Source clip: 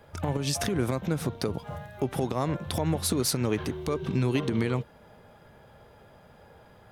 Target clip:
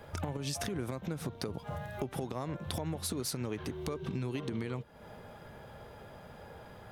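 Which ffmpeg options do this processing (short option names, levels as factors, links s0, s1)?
-af "acompressor=threshold=0.0112:ratio=4,volume=1.5"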